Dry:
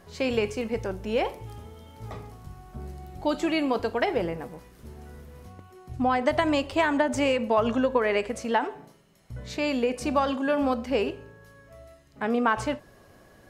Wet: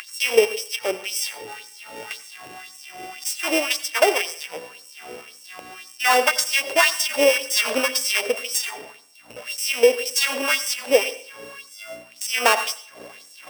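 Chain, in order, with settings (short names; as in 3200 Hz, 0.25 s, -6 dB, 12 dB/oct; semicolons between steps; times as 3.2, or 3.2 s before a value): sample sorter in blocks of 16 samples; hum 60 Hz, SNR 16 dB; upward compressor, threshold -28 dBFS; LFO high-pass sine 1.9 Hz 450–7000 Hz; on a send: reverb RT60 0.50 s, pre-delay 81 ms, DRR 15 dB; on the sum: gain +5 dB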